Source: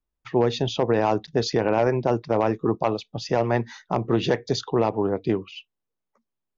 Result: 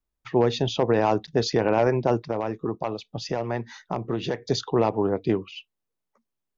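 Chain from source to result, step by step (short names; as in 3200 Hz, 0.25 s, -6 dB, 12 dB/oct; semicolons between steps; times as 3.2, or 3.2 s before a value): 2.29–4.42 compressor 2:1, threshold -28 dBFS, peak gain reduction 7 dB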